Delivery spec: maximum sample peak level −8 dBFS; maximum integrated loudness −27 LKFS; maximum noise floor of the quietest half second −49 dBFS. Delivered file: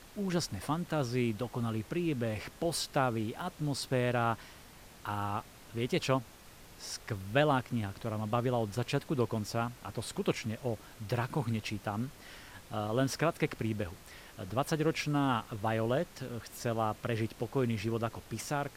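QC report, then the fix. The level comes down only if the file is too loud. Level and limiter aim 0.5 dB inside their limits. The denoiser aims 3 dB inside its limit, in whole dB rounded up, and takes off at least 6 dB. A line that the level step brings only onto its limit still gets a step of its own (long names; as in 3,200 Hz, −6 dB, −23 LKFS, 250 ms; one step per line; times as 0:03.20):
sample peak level −12.0 dBFS: in spec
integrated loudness −34.0 LKFS: in spec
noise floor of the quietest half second −54 dBFS: in spec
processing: no processing needed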